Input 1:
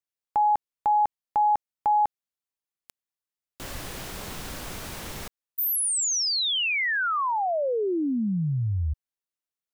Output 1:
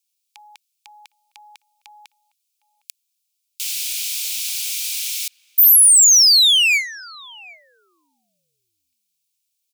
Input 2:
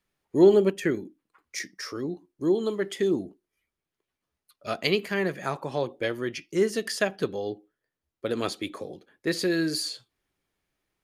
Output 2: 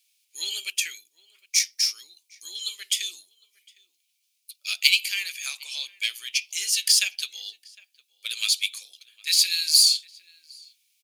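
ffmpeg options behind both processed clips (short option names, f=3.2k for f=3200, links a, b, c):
-filter_complex "[0:a]highpass=f=2.3k:t=q:w=7.6,asplit=2[a][b];[b]adelay=758,volume=-22dB,highshelf=f=4k:g=-17.1[c];[a][c]amix=inputs=2:normalize=0,aexciter=amount=7.3:drive=9.7:freq=3.1k,volume=-9.5dB"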